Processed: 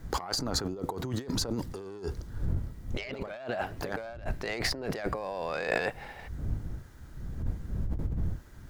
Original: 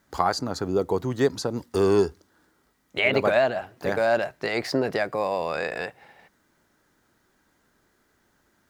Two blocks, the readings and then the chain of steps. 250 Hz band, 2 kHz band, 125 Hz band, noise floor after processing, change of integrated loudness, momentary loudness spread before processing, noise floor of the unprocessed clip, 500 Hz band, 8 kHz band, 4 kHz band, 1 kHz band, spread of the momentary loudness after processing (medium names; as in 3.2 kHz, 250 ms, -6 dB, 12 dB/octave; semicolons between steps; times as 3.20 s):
-7.0 dB, -8.0 dB, +1.0 dB, -48 dBFS, -9.5 dB, 9 LU, -68 dBFS, -12.0 dB, +2.0 dB, -2.0 dB, -9.0 dB, 9 LU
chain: self-modulated delay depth 0.068 ms; wind noise 84 Hz -36 dBFS; compressor with a negative ratio -34 dBFS, ratio -1